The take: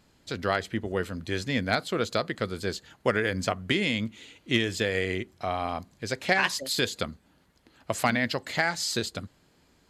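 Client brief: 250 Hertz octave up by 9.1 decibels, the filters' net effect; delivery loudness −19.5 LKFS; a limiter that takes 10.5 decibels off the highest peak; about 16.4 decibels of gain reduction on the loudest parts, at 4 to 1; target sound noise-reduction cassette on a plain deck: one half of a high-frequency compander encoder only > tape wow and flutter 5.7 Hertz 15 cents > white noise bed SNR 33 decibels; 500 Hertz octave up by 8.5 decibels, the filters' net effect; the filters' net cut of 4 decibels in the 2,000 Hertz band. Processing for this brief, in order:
parametric band 250 Hz +9 dB
parametric band 500 Hz +8 dB
parametric band 2,000 Hz −5.5 dB
downward compressor 4 to 1, threshold −31 dBFS
brickwall limiter −25.5 dBFS
one half of a high-frequency compander encoder only
tape wow and flutter 5.7 Hz 15 cents
white noise bed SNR 33 dB
level +17.5 dB

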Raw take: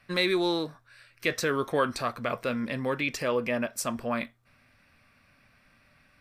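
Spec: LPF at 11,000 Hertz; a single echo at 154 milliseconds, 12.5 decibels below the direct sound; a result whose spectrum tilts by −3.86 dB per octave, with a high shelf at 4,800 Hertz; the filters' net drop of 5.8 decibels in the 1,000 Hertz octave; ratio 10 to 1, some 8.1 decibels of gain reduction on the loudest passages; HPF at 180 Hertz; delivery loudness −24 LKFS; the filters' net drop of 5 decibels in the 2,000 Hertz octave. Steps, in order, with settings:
high-pass filter 180 Hz
low-pass filter 11,000 Hz
parametric band 1,000 Hz −6 dB
parametric band 2,000 Hz −4 dB
high-shelf EQ 4,800 Hz −3.5 dB
downward compressor 10 to 1, threshold −32 dBFS
single-tap delay 154 ms −12.5 dB
level +13.5 dB

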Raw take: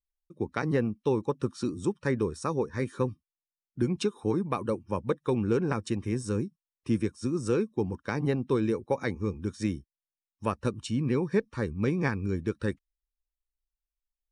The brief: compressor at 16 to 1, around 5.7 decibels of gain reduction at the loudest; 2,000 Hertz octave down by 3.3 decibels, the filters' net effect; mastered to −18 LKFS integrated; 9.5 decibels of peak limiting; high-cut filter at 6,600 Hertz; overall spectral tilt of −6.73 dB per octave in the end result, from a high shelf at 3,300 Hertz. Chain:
low-pass filter 6,600 Hz
parametric band 2,000 Hz −7 dB
high-shelf EQ 3,300 Hz +9 dB
downward compressor 16 to 1, threshold −27 dBFS
level +18.5 dB
brickwall limiter −6.5 dBFS

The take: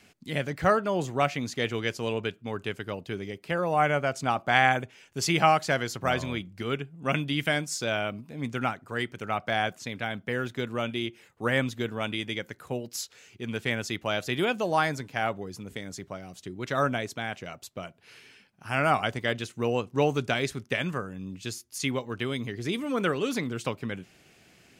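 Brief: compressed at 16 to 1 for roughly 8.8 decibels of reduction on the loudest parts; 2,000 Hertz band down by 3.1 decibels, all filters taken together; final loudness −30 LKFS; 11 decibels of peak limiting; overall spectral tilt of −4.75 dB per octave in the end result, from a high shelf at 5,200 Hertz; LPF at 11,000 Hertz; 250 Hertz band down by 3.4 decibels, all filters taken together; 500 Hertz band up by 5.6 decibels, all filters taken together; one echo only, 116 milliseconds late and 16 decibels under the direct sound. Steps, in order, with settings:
low-pass filter 11,000 Hz
parametric band 250 Hz −8 dB
parametric band 500 Hz +9 dB
parametric band 2,000 Hz −4 dB
high-shelf EQ 5,200 Hz −4 dB
downward compressor 16 to 1, threshold −23 dBFS
brickwall limiter −23.5 dBFS
single-tap delay 116 ms −16 dB
level +5 dB

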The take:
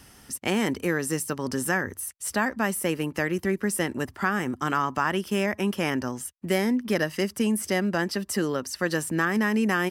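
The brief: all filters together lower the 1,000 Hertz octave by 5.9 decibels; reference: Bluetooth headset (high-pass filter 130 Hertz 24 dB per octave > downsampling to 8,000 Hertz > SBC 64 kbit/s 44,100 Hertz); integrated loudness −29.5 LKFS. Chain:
high-pass filter 130 Hz 24 dB per octave
parametric band 1,000 Hz −8 dB
downsampling to 8,000 Hz
level −1 dB
SBC 64 kbit/s 44,100 Hz

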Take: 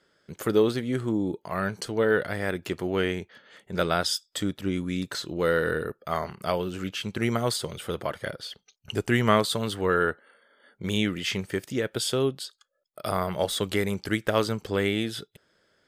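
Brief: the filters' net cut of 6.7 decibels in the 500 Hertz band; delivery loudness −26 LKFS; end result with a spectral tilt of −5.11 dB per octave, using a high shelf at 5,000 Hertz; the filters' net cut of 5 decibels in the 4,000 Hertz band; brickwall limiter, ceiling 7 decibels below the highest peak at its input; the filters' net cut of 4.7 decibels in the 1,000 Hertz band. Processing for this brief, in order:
parametric band 500 Hz −7.5 dB
parametric band 1,000 Hz −4 dB
parametric band 4,000 Hz −4.5 dB
high-shelf EQ 5,000 Hz −3.5 dB
level +6.5 dB
brickwall limiter −12 dBFS

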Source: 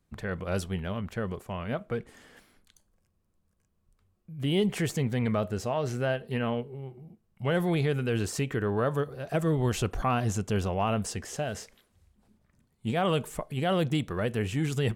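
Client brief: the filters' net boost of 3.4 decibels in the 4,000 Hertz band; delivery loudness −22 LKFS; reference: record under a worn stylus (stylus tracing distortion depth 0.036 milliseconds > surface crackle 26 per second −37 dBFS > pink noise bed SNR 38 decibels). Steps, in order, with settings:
parametric band 4,000 Hz +5 dB
stylus tracing distortion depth 0.036 ms
surface crackle 26 per second −37 dBFS
pink noise bed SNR 38 dB
level +8 dB

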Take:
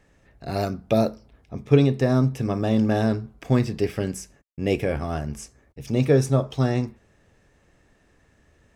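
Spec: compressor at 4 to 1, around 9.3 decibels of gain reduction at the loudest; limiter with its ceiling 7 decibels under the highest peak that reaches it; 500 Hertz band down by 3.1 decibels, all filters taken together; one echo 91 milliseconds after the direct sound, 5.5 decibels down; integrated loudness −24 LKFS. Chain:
parametric band 500 Hz −4 dB
downward compressor 4 to 1, threshold −23 dBFS
brickwall limiter −19 dBFS
single-tap delay 91 ms −5.5 dB
level +6 dB

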